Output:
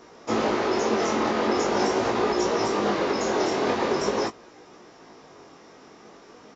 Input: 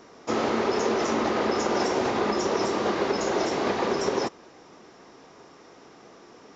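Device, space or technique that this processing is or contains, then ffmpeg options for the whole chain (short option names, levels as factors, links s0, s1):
double-tracked vocal: -filter_complex "[0:a]asplit=2[s0][s1];[s1]adelay=19,volume=0.266[s2];[s0][s2]amix=inputs=2:normalize=0,flanger=delay=16.5:depth=7.2:speed=0.43,volume=1.58"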